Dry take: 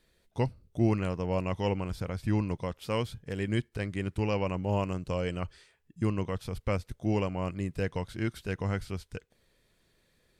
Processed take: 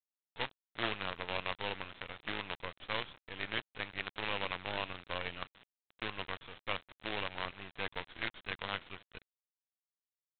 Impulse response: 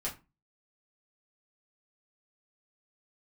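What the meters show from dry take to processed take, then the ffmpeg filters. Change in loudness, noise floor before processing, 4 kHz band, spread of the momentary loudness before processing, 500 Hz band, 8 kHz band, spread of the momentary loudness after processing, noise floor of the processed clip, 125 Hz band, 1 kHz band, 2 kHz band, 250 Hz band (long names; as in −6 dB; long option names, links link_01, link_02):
−7.5 dB, −70 dBFS, +5.5 dB, 6 LU, −11.5 dB, below −25 dB, 7 LU, below −85 dBFS, −20.5 dB, −3.5 dB, +2.5 dB, −17.5 dB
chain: -filter_complex "[0:a]acrossover=split=2700[link_01][link_02];[link_02]asoftclip=type=tanh:threshold=-39dB[link_03];[link_01][link_03]amix=inputs=2:normalize=0,acrusher=bits=2:mode=log:mix=0:aa=0.000001,bandpass=frequency=2900:width_type=q:width=0.66:csg=0,aresample=8000,acrusher=bits=6:dc=4:mix=0:aa=0.000001,aresample=44100,volume=2.5dB"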